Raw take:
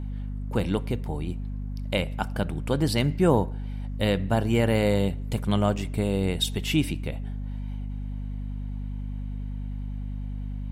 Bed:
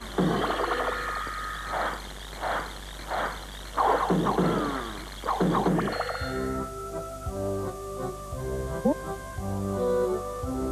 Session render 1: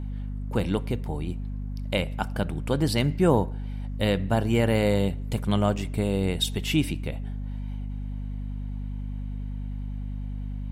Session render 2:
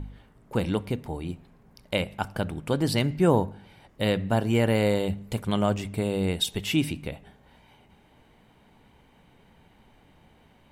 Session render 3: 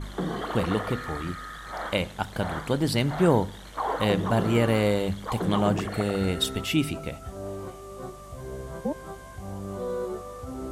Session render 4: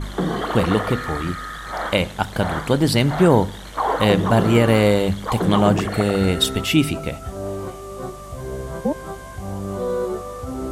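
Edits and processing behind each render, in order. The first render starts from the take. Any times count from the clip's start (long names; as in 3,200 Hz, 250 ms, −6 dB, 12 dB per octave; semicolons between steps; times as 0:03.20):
no processing that can be heard
hum removal 50 Hz, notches 5
mix in bed −5.5 dB
level +7.5 dB; brickwall limiter −3 dBFS, peak gain reduction 3 dB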